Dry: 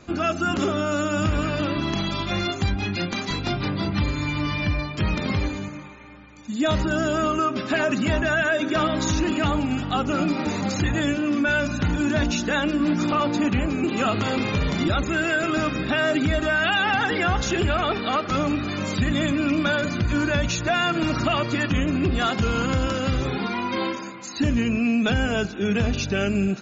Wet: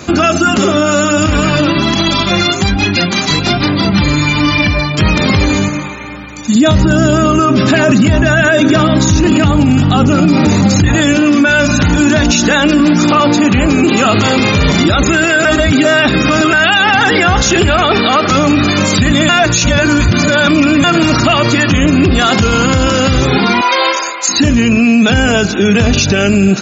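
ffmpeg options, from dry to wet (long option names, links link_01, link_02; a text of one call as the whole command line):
ffmpeg -i in.wav -filter_complex "[0:a]asettb=1/sr,asplit=3[link_01][link_02][link_03];[link_01]atrim=end=0.384[link_04];[link_02]atrim=start=0.38:end=5.02,asetpts=PTS-STARTPTS,afade=type=in:duration=0.004:curve=qsin,afade=type=out:start_time=4.636:duration=0.004:curve=qsin,flanger=delay=2.8:depth=4.1:regen=41:speed=1.2:shape=triangular[link_05];[link_03]atrim=start=5.016[link_06];[link_04][link_05]acrossfade=duration=0.004:curve1=hsin:curve2=qsin[link_07];[link_07][link_06]acrossfade=duration=0.004:curve1=qsin:curve2=hsin,asettb=1/sr,asplit=3[link_08][link_09][link_10];[link_08]atrim=end=6.554[link_11];[link_09]atrim=start=6.55:end=10.88,asetpts=PTS-STARTPTS,afade=type=in:duration=0.004:curve=qsin,afade=type=out:start_time=4.326:duration=0.004:curve=qsin,equalizer=frequency=110:width=0.47:gain=11.5[link_12];[link_10]atrim=start=10.876[link_13];[link_11][link_12]acrossfade=duration=0.004:curve1=hsin:curve2=qsin[link_14];[link_14][link_13]acrossfade=duration=0.004:curve1=qsin:curve2=hsin,asettb=1/sr,asplit=3[link_15][link_16][link_17];[link_15]atrim=end=23.614[link_18];[link_16]atrim=start=23.61:end=24.29,asetpts=PTS-STARTPTS,afade=type=in:duration=0.004:curve=qsin,afade=type=out:start_time=0.676:duration=0.004:curve=qsin,highpass=frequency=490:width=0.5412,highpass=frequency=490:width=1.3066[link_19];[link_17]atrim=start=24.286[link_20];[link_18][link_19]acrossfade=duration=0.004:curve1=hsin:curve2=qsin[link_21];[link_21][link_20]acrossfade=duration=0.004:curve1=qsin:curve2=hsin,asplit=5[link_22][link_23][link_24][link_25][link_26];[link_22]atrim=end=15.452[link_27];[link_23]atrim=start=15.448:end=16.532,asetpts=PTS-STARTPTS,areverse[link_28];[link_24]atrim=start=16.528:end=19.292[link_29];[link_25]atrim=start=19.288:end=20.842,asetpts=PTS-STARTPTS,areverse[link_30];[link_26]atrim=start=20.838[link_31];[link_27][link_28]acrossfade=duration=0.004:curve1=hsin:curve2=hsin[link_32];[link_32][link_29]acrossfade=duration=0.004:curve1=hsin:curve2=hsin[link_33];[link_33][link_30]acrossfade=duration=0.004:curve1=hsin:curve2=hsin[link_34];[link_34][link_31]acrossfade=duration=0.004:curve1=hsin:curve2=hsin,highpass=55,highshelf=frequency=5600:gain=10,alimiter=level_in=19.5dB:limit=-1dB:release=50:level=0:latency=1,volume=-1dB" out.wav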